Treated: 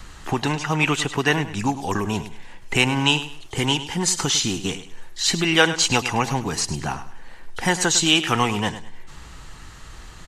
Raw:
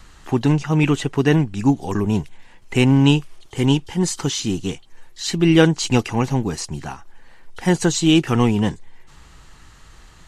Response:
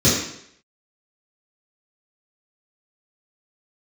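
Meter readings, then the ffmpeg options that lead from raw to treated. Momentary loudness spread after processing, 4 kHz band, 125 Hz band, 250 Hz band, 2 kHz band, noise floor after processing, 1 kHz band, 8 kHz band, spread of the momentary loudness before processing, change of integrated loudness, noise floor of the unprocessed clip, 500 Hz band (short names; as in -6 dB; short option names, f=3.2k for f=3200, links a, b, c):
12 LU, +5.0 dB, -7.5 dB, -7.5 dB, +5.0 dB, -42 dBFS, +3.5 dB, +5.0 dB, 13 LU, -2.0 dB, -47 dBFS, -4.5 dB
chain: -filter_complex "[0:a]acrossover=split=660|1200[a][b][c];[a]acompressor=threshold=-29dB:ratio=6[d];[d][b][c]amix=inputs=3:normalize=0,aecho=1:1:103|206|309:0.224|0.0627|0.0176,volume=5dB"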